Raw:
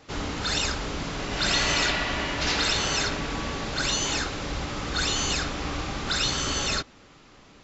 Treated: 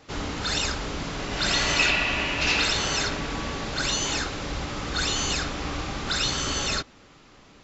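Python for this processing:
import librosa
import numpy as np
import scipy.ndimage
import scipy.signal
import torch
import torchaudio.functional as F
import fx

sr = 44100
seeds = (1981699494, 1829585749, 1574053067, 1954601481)

y = fx.peak_eq(x, sr, hz=2600.0, db=12.5, octaves=0.21, at=(1.79, 2.66))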